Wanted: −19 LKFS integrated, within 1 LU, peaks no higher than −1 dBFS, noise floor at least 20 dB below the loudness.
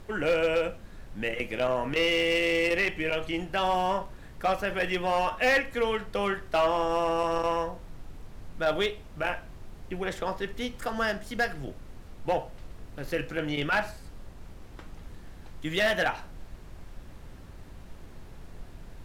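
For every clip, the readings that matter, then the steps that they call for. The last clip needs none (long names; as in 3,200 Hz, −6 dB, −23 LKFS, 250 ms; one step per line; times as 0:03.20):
share of clipped samples 0.6%; peaks flattened at −18.0 dBFS; background noise floor −47 dBFS; target noise floor −49 dBFS; integrated loudness −28.5 LKFS; sample peak −18.0 dBFS; target loudness −19.0 LKFS
→ clipped peaks rebuilt −18 dBFS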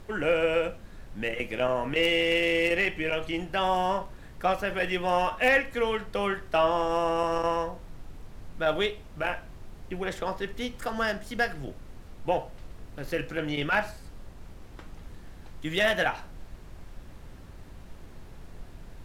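share of clipped samples 0.0%; background noise floor −47 dBFS; target noise floor −48 dBFS
→ noise reduction from a noise print 6 dB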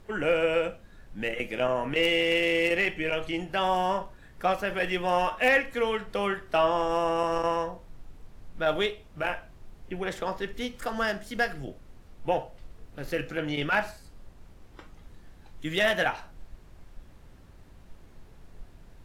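background noise floor −52 dBFS; integrated loudness −27.5 LKFS; sample peak −10.5 dBFS; target loudness −19.0 LKFS
→ level +8.5 dB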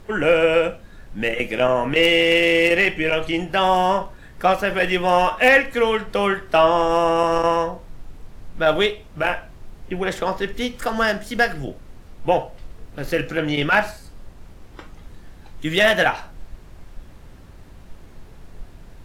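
integrated loudness −19.0 LKFS; sample peak −2.0 dBFS; background noise floor −44 dBFS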